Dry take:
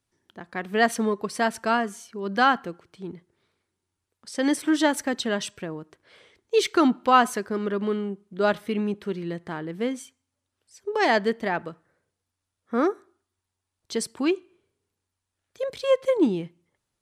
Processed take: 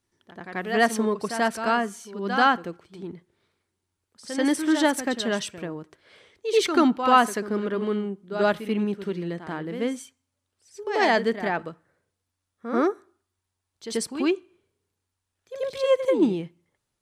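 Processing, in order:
backwards echo 87 ms −9 dB

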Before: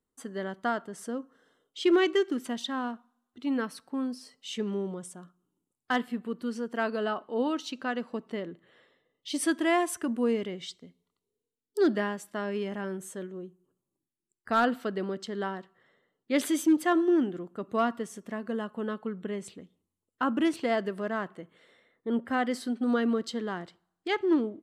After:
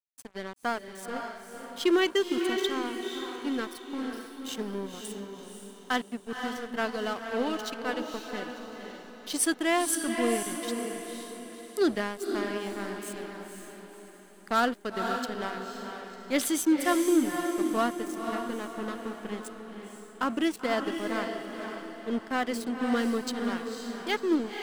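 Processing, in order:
high-pass filter 45 Hz
high-shelf EQ 4,000 Hz +10 dB
dead-zone distortion −38 dBFS
on a send: feedback delay with all-pass diffusion 517 ms, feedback 45%, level −5 dB

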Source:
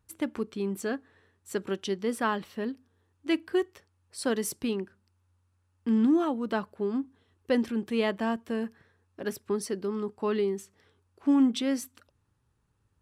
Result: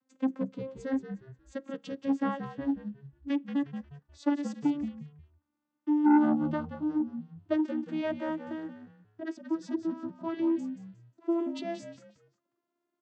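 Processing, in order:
vocoder with a gliding carrier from C4, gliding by +5 semitones
echo with shifted repeats 179 ms, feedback 31%, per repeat −70 Hz, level −10 dB
saturating transformer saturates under 530 Hz

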